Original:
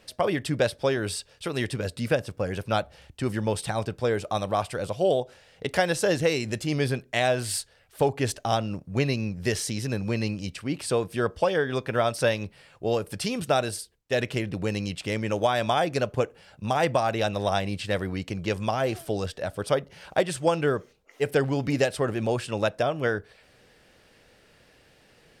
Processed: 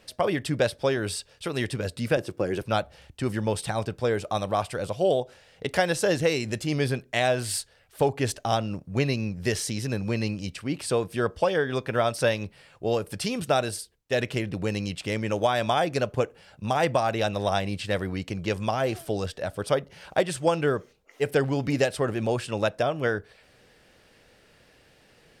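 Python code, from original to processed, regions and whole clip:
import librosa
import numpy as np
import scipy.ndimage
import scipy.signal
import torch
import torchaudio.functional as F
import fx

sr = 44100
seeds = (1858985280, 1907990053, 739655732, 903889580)

y = fx.chain(x, sr, fx.highpass(hz=110.0, slope=12),
    fx.peak_eq(hz=350.0, db=14.0, octaves=0.31), at=(2.17, 2.62))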